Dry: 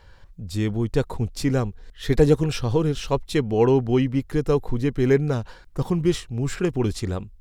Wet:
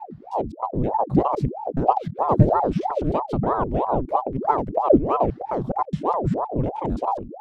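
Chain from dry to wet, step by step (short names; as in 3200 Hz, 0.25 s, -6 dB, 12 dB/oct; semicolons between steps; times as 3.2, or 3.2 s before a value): slices in reverse order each 0.104 s, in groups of 3; RIAA curve playback; ring modulator with a swept carrier 510 Hz, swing 75%, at 3.1 Hz; gain -7.5 dB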